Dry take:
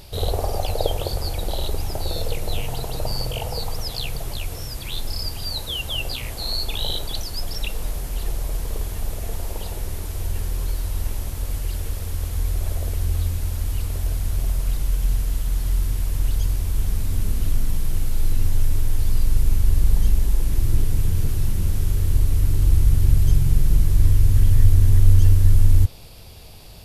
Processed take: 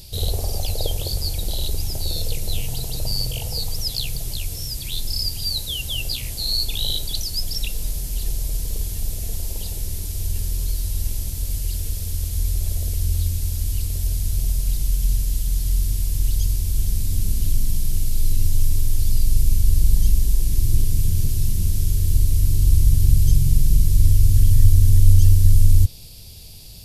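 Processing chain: EQ curve 150 Hz 0 dB, 1200 Hz -14 dB, 4900 Hz +5 dB; gain +1 dB

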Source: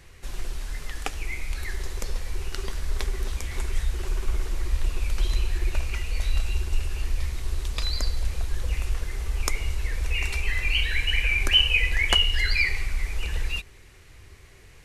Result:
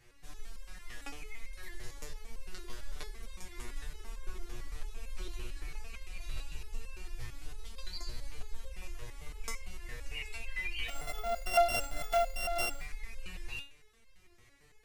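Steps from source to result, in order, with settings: 10.88–12.8 sample sorter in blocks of 64 samples; stepped resonator 8.9 Hz 120–530 Hz; gain +1 dB

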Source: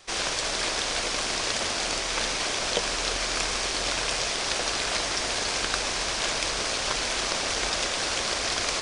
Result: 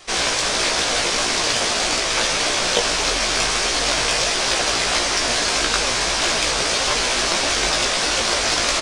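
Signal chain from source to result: flange 1.6 Hz, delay 2.6 ms, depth 5.9 ms, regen +68%; in parallel at -7.5 dB: soft clip -26 dBFS, distortion -16 dB; on the sum: doubler 17 ms -3 dB; gain +8 dB

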